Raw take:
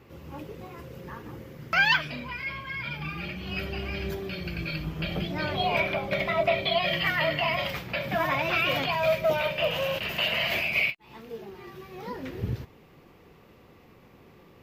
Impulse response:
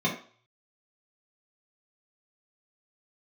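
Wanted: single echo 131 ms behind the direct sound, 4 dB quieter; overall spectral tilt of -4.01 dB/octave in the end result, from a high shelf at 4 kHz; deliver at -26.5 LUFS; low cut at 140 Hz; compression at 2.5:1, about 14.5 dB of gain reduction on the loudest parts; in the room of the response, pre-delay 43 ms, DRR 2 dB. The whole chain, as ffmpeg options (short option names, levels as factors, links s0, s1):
-filter_complex "[0:a]highpass=140,highshelf=f=4000:g=-7.5,acompressor=threshold=0.00708:ratio=2.5,aecho=1:1:131:0.631,asplit=2[s0][s1];[1:a]atrim=start_sample=2205,adelay=43[s2];[s1][s2]afir=irnorm=-1:irlink=0,volume=0.224[s3];[s0][s3]amix=inputs=2:normalize=0,volume=2.99"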